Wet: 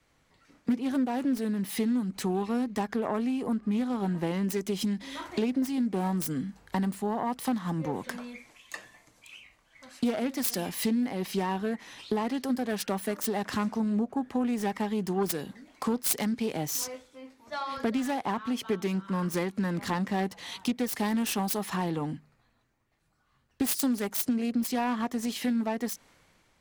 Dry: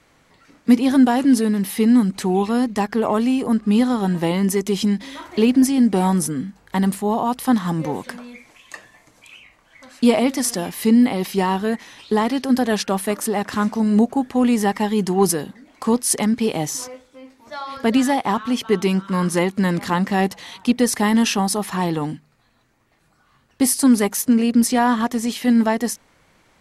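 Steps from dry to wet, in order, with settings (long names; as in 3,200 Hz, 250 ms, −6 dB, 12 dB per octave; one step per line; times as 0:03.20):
phase distortion by the signal itself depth 0.18 ms
downward compressor 4 to 1, threshold −28 dBFS, peak gain reduction 16.5 dB
multiband upward and downward expander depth 40%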